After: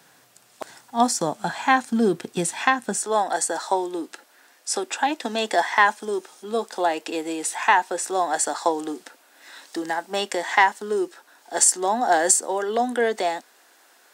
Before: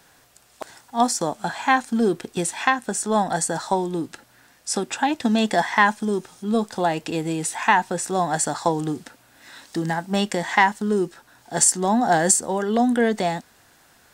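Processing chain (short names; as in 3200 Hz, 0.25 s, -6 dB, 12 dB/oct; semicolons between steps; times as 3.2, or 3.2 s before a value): HPF 120 Hz 24 dB/oct, from 2.98 s 320 Hz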